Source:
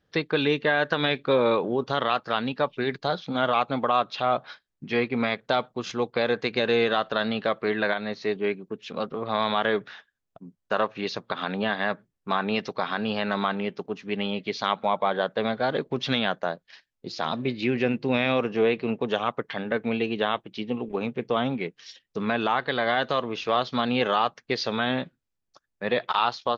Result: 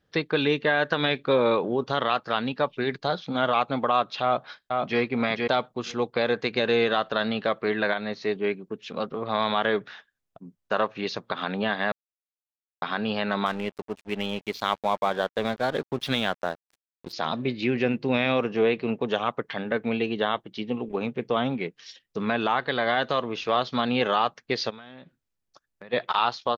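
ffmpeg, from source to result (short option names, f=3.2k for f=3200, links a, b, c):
-filter_complex "[0:a]asplit=2[a][b];[b]afade=t=in:st=4.23:d=0.01,afade=t=out:st=5:d=0.01,aecho=0:1:470|940:0.707946|0.0707946[c];[a][c]amix=inputs=2:normalize=0,asettb=1/sr,asplit=3[d][e][f];[d]atrim=end=13.464[g];[e]atrim=start=13.46:end=17.13,asetpts=PTS-STARTPTS,afade=t=in:d=0.004:c=qsin,afade=t=out:st=3.666:d=0.004:c=qsin,aeval=exprs='sgn(val(0))*max(abs(val(0))-0.00944,0)':c=same[h];[f]atrim=start=17.126[i];[g][h]acrossfade=d=0.004:c1=hsin:c2=qsin[j];[j][i]acrossfade=d=0.004:c1=qsin:c2=hsin,asettb=1/sr,asplit=3[k][l][m];[k]atrim=end=20.124[n];[l]atrim=start=20.12:end=20.58,asetpts=PTS-STARTPTS,afade=t=in:d=0.004:c=qsin,afade=t=out:st=0.456:d=0.004:c=qsin,bandreject=f=2.5k:w=6.3[o];[m]atrim=start=20.576[p];[n][o]acrossfade=d=0.004:c1=hsin:c2=qsin[q];[q][p]acrossfade=d=0.004:c1=qsin:c2=hsin,asplit=3[r][s][t];[r]afade=t=out:st=24.69:d=0.02[u];[s]acompressor=threshold=-40dB:ratio=12:attack=3.2:release=140:knee=1:detection=peak,afade=t=in:st=24.69:d=0.02,afade=t=out:st=25.92:d=0.02[v];[t]afade=t=in:st=25.92:d=0.02[w];[u][v][w]amix=inputs=3:normalize=0,asplit=3[x][y][z];[x]atrim=end=11.92,asetpts=PTS-STARTPTS,afade=t=out:st=11.916:d=0.004:c=hsin[aa];[y]atrim=start=11.92:end=12.82,asetpts=PTS-STARTPTS,volume=0[ab];[z]atrim=start=12.82,asetpts=PTS-STARTPTS,afade=t=in:d=0.004:c=hsin[ac];[aa][ab][ac]concat=n=3:v=0:a=1"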